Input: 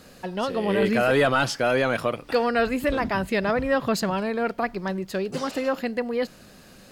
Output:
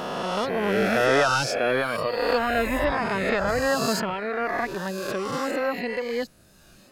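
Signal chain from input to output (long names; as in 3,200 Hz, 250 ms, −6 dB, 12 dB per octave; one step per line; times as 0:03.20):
peak hold with a rise ahead of every peak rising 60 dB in 2.24 s
reverb reduction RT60 1.2 s
0:02.77–0:03.47: high-shelf EQ 11,000 Hz → 7,100 Hz −11 dB
level −2 dB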